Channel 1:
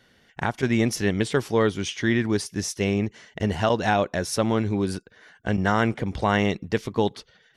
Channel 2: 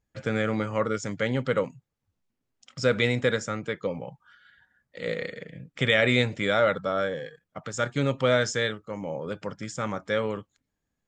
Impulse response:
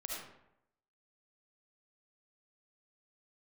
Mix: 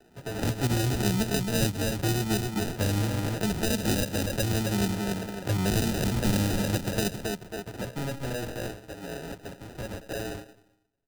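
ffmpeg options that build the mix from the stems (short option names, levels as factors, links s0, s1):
-filter_complex "[0:a]asplit=2[s0][s1];[s1]adelay=2.3,afreqshift=0.84[s2];[s0][s2]amix=inputs=2:normalize=1,volume=1.33,asplit=2[s3][s4];[s4]volume=0.562[s5];[1:a]aecho=1:1:7:0.7,acrusher=samples=36:mix=1:aa=0.000001,asoftclip=type=tanh:threshold=0.0891,volume=0.447,asplit=2[s6][s7];[s7]volume=0.299[s8];[2:a]atrim=start_sample=2205[s9];[s8][s9]afir=irnorm=-1:irlink=0[s10];[s5]aecho=0:1:271|542|813|1084|1355:1|0.35|0.122|0.0429|0.015[s11];[s3][s6][s10][s11]amix=inputs=4:normalize=0,acrusher=samples=40:mix=1:aa=0.000001,acrossover=split=230|3000[s12][s13][s14];[s13]acompressor=threshold=0.0316:ratio=6[s15];[s12][s15][s14]amix=inputs=3:normalize=0"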